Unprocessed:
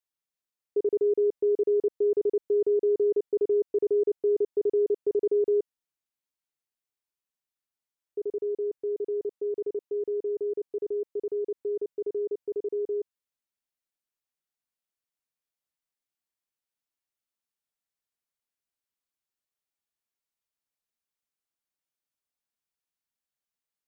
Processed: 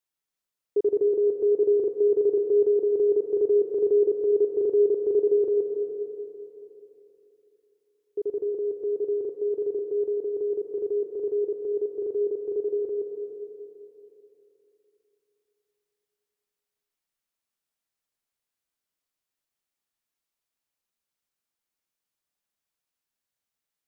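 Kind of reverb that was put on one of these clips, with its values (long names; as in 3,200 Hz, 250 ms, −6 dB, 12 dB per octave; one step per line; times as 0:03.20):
comb and all-pass reverb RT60 3.3 s, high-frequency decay 0.9×, pre-delay 75 ms, DRR 4 dB
level +2.5 dB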